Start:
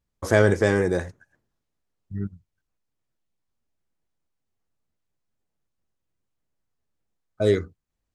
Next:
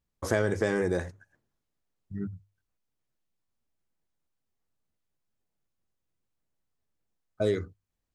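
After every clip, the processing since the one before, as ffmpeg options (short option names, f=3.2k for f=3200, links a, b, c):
-af "bandreject=f=50:t=h:w=6,bandreject=f=100:t=h:w=6,acompressor=threshold=-20dB:ratio=4,volume=-2.5dB"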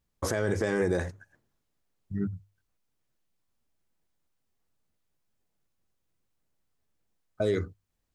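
-af "alimiter=limit=-21.5dB:level=0:latency=1:release=47,volume=4dB"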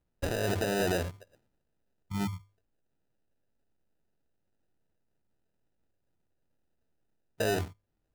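-af "acrusher=samples=40:mix=1:aa=0.000001,asoftclip=type=tanh:threshold=-21.5dB"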